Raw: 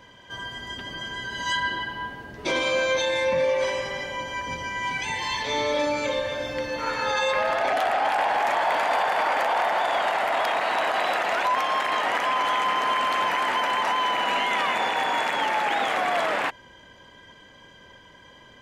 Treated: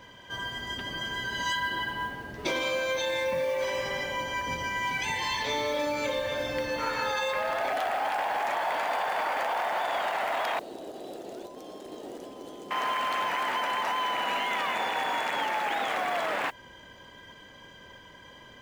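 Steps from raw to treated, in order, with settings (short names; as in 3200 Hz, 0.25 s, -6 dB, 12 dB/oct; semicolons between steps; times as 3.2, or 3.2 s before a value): compressor, threshold -26 dBFS, peak gain reduction 7 dB; 10.59–12.71 EQ curve 220 Hz 0 dB, 370 Hz +6 dB, 1000 Hz -24 dB, 2200 Hz -29 dB, 3600 Hz -13 dB, 8300 Hz -6 dB; modulation noise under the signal 27 dB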